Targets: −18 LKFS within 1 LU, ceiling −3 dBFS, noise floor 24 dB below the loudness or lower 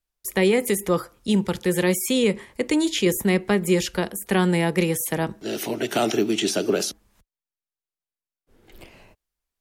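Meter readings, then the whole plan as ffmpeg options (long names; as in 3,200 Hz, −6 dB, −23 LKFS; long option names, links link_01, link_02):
integrated loudness −23.0 LKFS; sample peak −8.5 dBFS; target loudness −18.0 LKFS
→ -af "volume=5dB"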